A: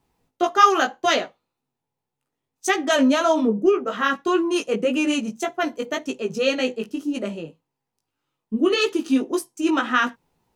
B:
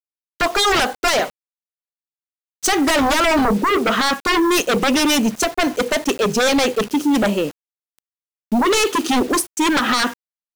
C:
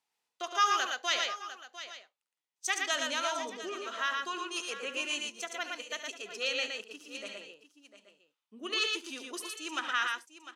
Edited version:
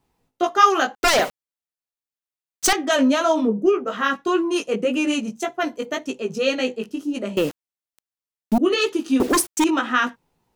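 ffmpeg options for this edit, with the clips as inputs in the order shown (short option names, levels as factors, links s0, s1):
-filter_complex "[1:a]asplit=3[s0][s1][s2];[0:a]asplit=4[s3][s4][s5][s6];[s3]atrim=end=0.952[s7];[s0]atrim=start=0.948:end=2.732[s8];[s4]atrim=start=2.728:end=7.372[s9];[s1]atrim=start=7.368:end=8.582[s10];[s5]atrim=start=8.578:end=9.202[s11];[s2]atrim=start=9.198:end=9.642[s12];[s6]atrim=start=9.638[s13];[s7][s8]acrossfade=d=0.004:c1=hsin:c2=hsin[s14];[s14][s9]acrossfade=d=0.004:c1=hsin:c2=hsin[s15];[s15][s10]acrossfade=d=0.004:c1=hsin:c2=hsin[s16];[s16][s11]acrossfade=d=0.004:c1=hsin:c2=hsin[s17];[s17][s12]acrossfade=d=0.004:c1=hsin:c2=hsin[s18];[s18][s13]acrossfade=d=0.004:c1=hsin:c2=hsin"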